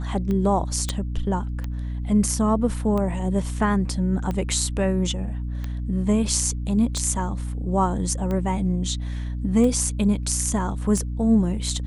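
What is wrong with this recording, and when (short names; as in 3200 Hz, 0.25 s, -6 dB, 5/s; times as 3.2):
hum 60 Hz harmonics 5 -28 dBFS
tick 45 rpm -17 dBFS
0.89 pop -10 dBFS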